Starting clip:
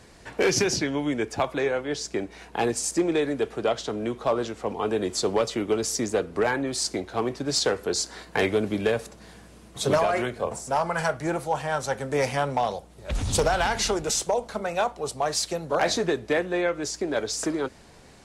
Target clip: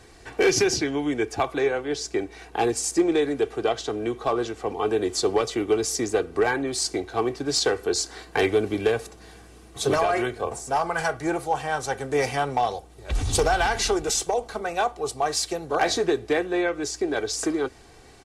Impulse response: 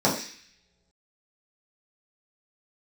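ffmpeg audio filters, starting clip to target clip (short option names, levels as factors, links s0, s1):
-af "aecho=1:1:2.6:0.52"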